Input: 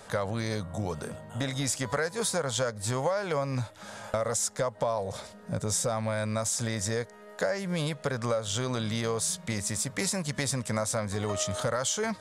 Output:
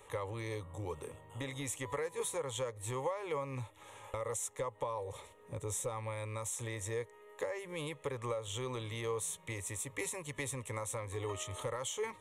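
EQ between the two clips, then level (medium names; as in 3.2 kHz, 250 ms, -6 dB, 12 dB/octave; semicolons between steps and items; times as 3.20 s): static phaser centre 1 kHz, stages 8; -5.0 dB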